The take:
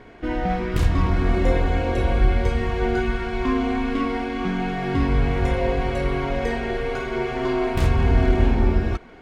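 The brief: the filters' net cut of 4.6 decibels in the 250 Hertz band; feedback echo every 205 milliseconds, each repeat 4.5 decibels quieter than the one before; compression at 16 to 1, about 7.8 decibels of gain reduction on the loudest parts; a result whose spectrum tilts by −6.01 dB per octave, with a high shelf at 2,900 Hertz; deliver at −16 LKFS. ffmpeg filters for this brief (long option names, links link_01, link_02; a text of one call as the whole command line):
ffmpeg -i in.wav -af "equalizer=frequency=250:width_type=o:gain=-6,highshelf=frequency=2900:gain=-5,acompressor=threshold=-20dB:ratio=16,aecho=1:1:205|410|615|820|1025|1230|1435|1640|1845:0.596|0.357|0.214|0.129|0.0772|0.0463|0.0278|0.0167|0.01,volume=10dB" out.wav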